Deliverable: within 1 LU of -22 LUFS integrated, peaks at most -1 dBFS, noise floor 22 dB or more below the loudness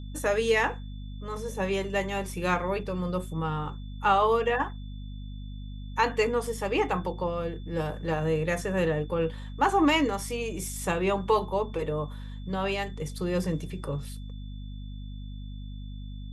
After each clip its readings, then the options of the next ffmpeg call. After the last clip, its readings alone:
hum 50 Hz; harmonics up to 250 Hz; hum level -36 dBFS; steady tone 3500 Hz; tone level -56 dBFS; loudness -28.5 LUFS; peak -10.0 dBFS; loudness target -22.0 LUFS
-> -af "bandreject=f=50:t=h:w=6,bandreject=f=100:t=h:w=6,bandreject=f=150:t=h:w=6,bandreject=f=200:t=h:w=6,bandreject=f=250:t=h:w=6"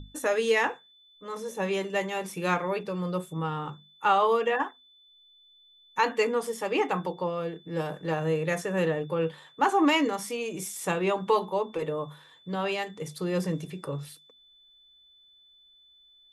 hum none; steady tone 3500 Hz; tone level -56 dBFS
-> -af "bandreject=f=3.5k:w=30"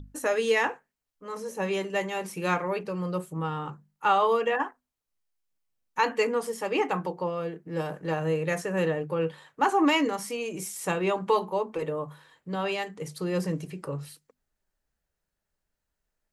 steady tone none; loudness -28.5 LUFS; peak -10.0 dBFS; loudness target -22.0 LUFS
-> -af "volume=6.5dB"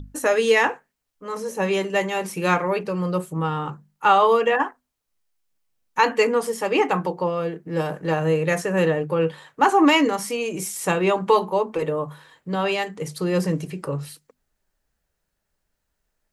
loudness -22.0 LUFS; peak -3.5 dBFS; noise floor -78 dBFS

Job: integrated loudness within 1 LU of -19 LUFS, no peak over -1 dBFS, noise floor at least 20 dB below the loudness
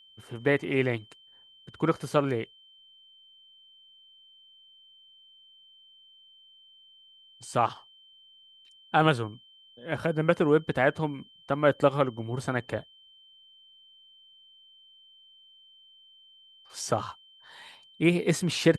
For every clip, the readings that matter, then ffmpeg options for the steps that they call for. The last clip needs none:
steady tone 3100 Hz; tone level -54 dBFS; loudness -27.5 LUFS; peak -8.0 dBFS; loudness target -19.0 LUFS
-> -af "bandreject=f=3.1k:w=30"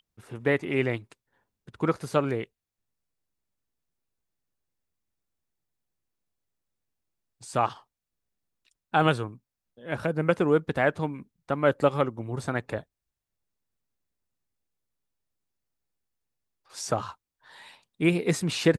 steady tone none; loudness -27.5 LUFS; peak -8.0 dBFS; loudness target -19.0 LUFS
-> -af "volume=8.5dB,alimiter=limit=-1dB:level=0:latency=1"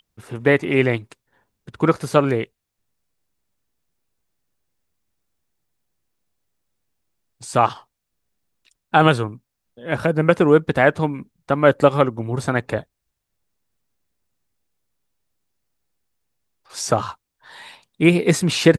loudness -19.0 LUFS; peak -1.0 dBFS; noise floor -79 dBFS

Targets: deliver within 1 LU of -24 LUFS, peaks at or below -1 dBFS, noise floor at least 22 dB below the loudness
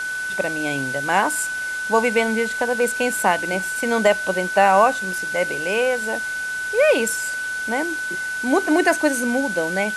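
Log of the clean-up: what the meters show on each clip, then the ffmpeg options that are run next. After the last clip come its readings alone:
steady tone 1500 Hz; tone level -24 dBFS; noise floor -27 dBFS; noise floor target -43 dBFS; loudness -20.5 LUFS; peak -2.5 dBFS; loudness target -24.0 LUFS
-> -af "bandreject=f=1.5k:w=30"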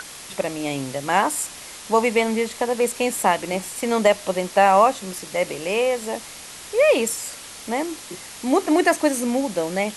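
steady tone none; noise floor -39 dBFS; noise floor target -44 dBFS
-> -af "afftdn=nr=6:nf=-39"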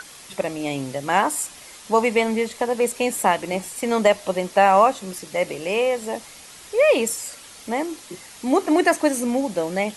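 noise floor -43 dBFS; noise floor target -44 dBFS
-> -af "afftdn=nr=6:nf=-43"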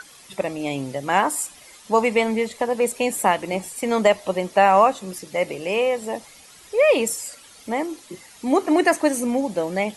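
noise floor -47 dBFS; loudness -21.5 LUFS; peak -3.0 dBFS; loudness target -24.0 LUFS
-> -af "volume=-2.5dB"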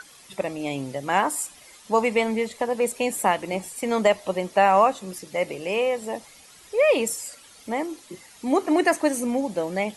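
loudness -24.0 LUFS; peak -5.5 dBFS; noise floor -50 dBFS

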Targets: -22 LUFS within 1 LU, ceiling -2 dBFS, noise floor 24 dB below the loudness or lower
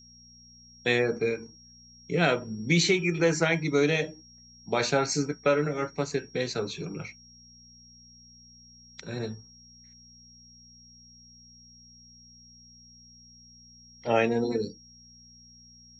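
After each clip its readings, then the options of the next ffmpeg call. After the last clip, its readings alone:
hum 60 Hz; harmonics up to 240 Hz; hum level -58 dBFS; steady tone 5600 Hz; tone level -52 dBFS; loudness -27.5 LUFS; peak -10.5 dBFS; loudness target -22.0 LUFS
-> -af "bandreject=f=60:t=h:w=4,bandreject=f=120:t=h:w=4,bandreject=f=180:t=h:w=4,bandreject=f=240:t=h:w=4"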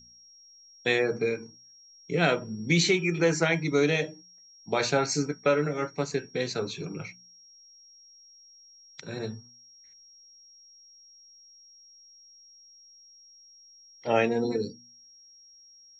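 hum none; steady tone 5600 Hz; tone level -52 dBFS
-> -af "bandreject=f=5.6k:w=30"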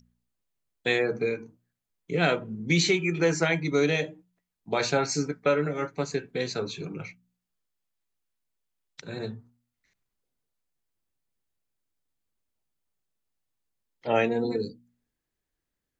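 steady tone none; loudness -27.5 LUFS; peak -10.5 dBFS; loudness target -22.0 LUFS
-> -af "volume=5.5dB"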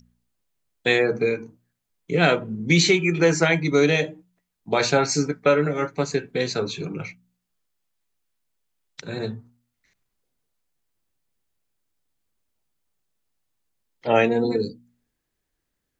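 loudness -22.0 LUFS; peak -5.0 dBFS; noise floor -79 dBFS

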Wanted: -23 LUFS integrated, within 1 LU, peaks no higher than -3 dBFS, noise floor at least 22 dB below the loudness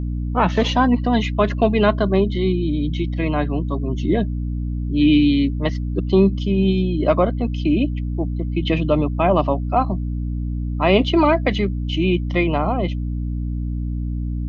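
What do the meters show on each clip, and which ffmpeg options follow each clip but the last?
hum 60 Hz; harmonics up to 300 Hz; hum level -21 dBFS; loudness -20.0 LUFS; peak -2.5 dBFS; loudness target -23.0 LUFS
-> -af "bandreject=f=60:t=h:w=6,bandreject=f=120:t=h:w=6,bandreject=f=180:t=h:w=6,bandreject=f=240:t=h:w=6,bandreject=f=300:t=h:w=6"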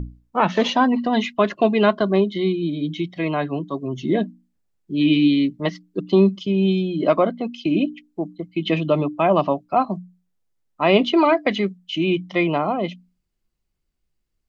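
hum none; loudness -20.5 LUFS; peak -3.0 dBFS; loudness target -23.0 LUFS
-> -af "volume=-2.5dB"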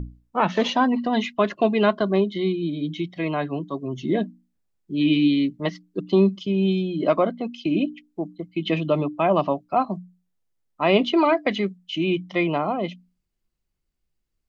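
loudness -23.0 LUFS; peak -5.5 dBFS; noise floor -77 dBFS

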